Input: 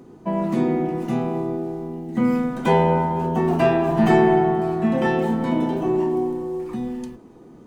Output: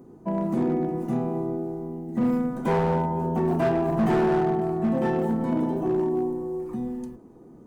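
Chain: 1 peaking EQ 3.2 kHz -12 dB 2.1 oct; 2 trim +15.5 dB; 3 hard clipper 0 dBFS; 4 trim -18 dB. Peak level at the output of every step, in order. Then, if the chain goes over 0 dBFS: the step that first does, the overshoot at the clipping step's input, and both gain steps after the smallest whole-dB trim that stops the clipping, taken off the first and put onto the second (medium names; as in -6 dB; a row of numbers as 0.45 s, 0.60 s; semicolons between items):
-6.0 dBFS, +9.5 dBFS, 0.0 dBFS, -18.0 dBFS; step 2, 9.5 dB; step 2 +5.5 dB, step 4 -8 dB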